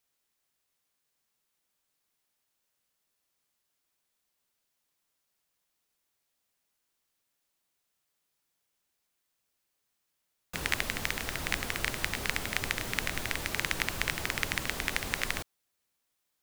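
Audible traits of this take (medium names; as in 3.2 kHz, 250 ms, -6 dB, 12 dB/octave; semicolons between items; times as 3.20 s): noise floor -81 dBFS; spectral tilt -2.5 dB/octave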